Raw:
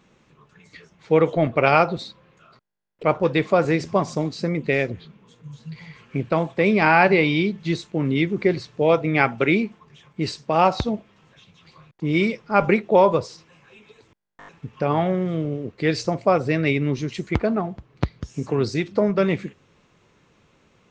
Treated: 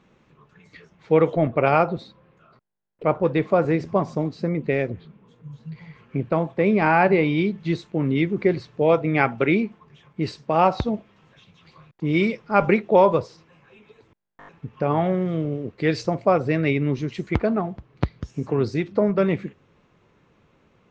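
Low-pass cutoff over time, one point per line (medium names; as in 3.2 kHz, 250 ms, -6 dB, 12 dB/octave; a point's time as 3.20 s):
low-pass 6 dB/octave
2.8 kHz
from 1.36 s 1.3 kHz
from 7.38 s 2.3 kHz
from 10.93 s 4 kHz
from 13.22 s 1.9 kHz
from 15.04 s 3.7 kHz
from 16.06 s 2.5 kHz
from 17.19 s 3.8 kHz
from 18.31 s 2 kHz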